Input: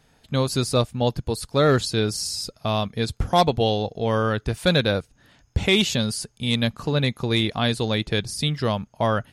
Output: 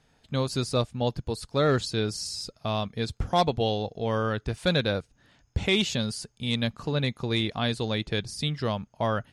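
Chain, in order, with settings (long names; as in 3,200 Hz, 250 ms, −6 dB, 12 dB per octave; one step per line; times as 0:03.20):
low-pass filter 8,800 Hz 12 dB per octave
level −5 dB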